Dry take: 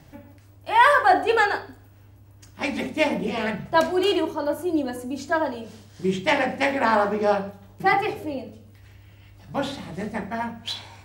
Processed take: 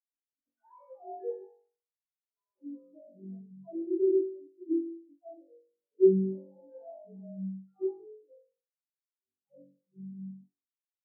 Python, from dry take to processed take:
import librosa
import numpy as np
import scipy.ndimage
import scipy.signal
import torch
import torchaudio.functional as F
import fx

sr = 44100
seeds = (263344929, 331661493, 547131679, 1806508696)

y = fx.spec_delay(x, sr, highs='early', ms=939)
y = fx.sample_hold(y, sr, seeds[0], rate_hz=3400.0, jitter_pct=0)
y = fx.high_shelf(y, sr, hz=2100.0, db=-10.5)
y = fx.room_flutter(y, sr, wall_m=3.6, rt60_s=1.5)
y = 10.0 ** (-16.0 / 20.0) * np.tanh(y / 10.0 ** (-16.0 / 20.0))
y = fx.peak_eq(y, sr, hz=360.0, db=12.0, octaves=2.2)
y = fx.spectral_expand(y, sr, expansion=4.0)
y = y * 10.0 ** (-8.0 / 20.0)